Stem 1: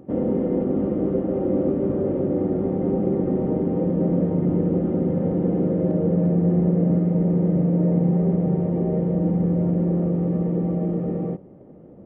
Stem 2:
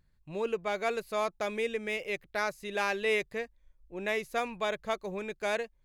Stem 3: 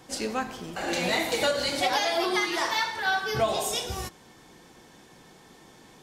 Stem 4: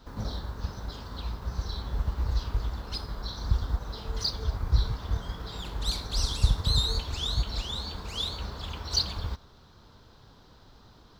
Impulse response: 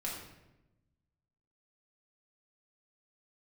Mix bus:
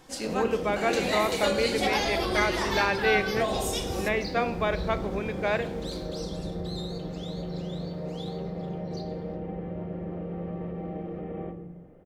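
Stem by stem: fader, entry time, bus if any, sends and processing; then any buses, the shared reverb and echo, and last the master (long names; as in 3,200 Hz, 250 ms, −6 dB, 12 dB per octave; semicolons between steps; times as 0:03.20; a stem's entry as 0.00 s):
+1.5 dB, 0.15 s, bus A, send −4.5 dB, graphic EQ with 10 bands 125 Hz −10 dB, 250 Hz −10 dB, 500 Hz −8 dB, 1,000 Hz −6 dB; brickwall limiter −28 dBFS, peak gain reduction 7 dB
+3.0 dB, 0.00 s, no bus, send −10.5 dB, low-pass filter 3,000 Hz
−4.5 dB, 0.00 s, no bus, send −9.5 dB, no processing
0:01.34 −19 dB → 0:01.55 −9 dB → 0:06.09 −9 dB → 0:06.41 −15.5 dB → 0:08.34 −15.5 dB → 0:08.86 −23.5 dB, 0.00 s, bus A, send −6 dB, no processing
bus A: 0.0 dB, Chebyshev high-pass filter 370 Hz, order 2; brickwall limiter −31.5 dBFS, peak gain reduction 6.5 dB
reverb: on, RT60 0.95 s, pre-delay 4 ms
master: no processing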